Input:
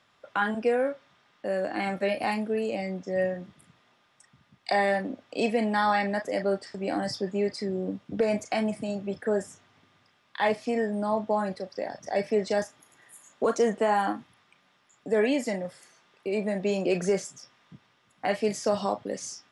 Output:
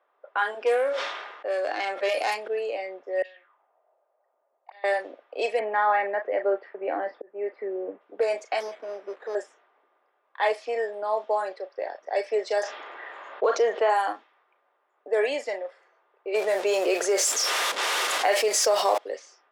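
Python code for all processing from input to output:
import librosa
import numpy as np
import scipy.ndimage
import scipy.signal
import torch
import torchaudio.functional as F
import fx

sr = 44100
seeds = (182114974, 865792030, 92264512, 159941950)

y = fx.chain(x, sr, fx.self_delay(depth_ms=0.076),
    fx.high_shelf(hz=5000.0, db=6.5),
    fx.sustainer(db_per_s=36.0), at=(0.59, 2.48))
y = fx.chain(y, sr, fx.auto_wah(base_hz=590.0, top_hz=3900.0, q=3.8, full_db=-24.5, direction='up'),
    fx.peak_eq(hz=3000.0, db=6.5, octaves=1.2),
    fx.over_compress(threshold_db=-45.0, ratio=-1.0), at=(3.22, 4.84))
y = fx.chain(y, sr, fx.auto_swell(attack_ms=390.0),
    fx.lowpass(hz=2400.0, slope=24),
    fx.low_shelf(hz=300.0, db=8.5), at=(5.59, 8.01))
y = fx.chain(y, sr, fx.delta_mod(bps=16000, step_db=-44.0),
    fx.resample_bad(factor=8, down='filtered', up='hold'), at=(8.6, 9.35))
y = fx.chain(y, sr, fx.lowpass(hz=4700.0, slope=24),
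    fx.env_flatten(amount_pct=50), at=(12.63, 13.9))
y = fx.chain(y, sr, fx.zero_step(step_db=-36.5),
    fx.env_flatten(amount_pct=70), at=(16.34, 18.98))
y = scipy.signal.sosfilt(scipy.signal.butter(6, 390.0, 'highpass', fs=sr, output='sos'), y)
y = fx.env_lowpass(y, sr, base_hz=1000.0, full_db=-22.0)
y = y * librosa.db_to_amplitude(1.5)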